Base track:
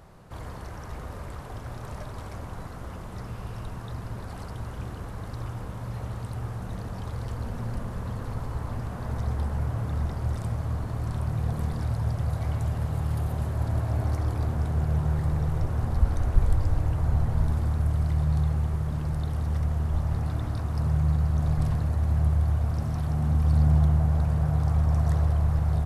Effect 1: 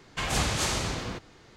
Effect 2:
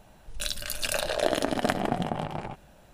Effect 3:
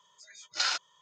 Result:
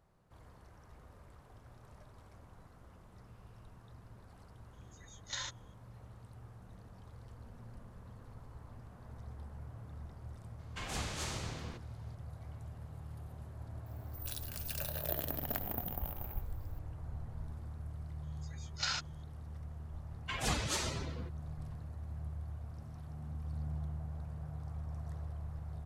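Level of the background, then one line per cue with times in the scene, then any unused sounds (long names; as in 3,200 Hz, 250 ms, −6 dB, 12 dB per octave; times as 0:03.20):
base track −19.5 dB
0:04.73: mix in 3 −13 dB + EQ curve with evenly spaced ripples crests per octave 1.1, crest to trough 14 dB
0:10.59: mix in 1 −12.5 dB
0:13.86: mix in 2 −17 dB + bad sample-rate conversion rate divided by 3×, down none, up zero stuff
0:18.23: mix in 3 −7 dB
0:20.11: mix in 1 −4 dB + spectral dynamics exaggerated over time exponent 2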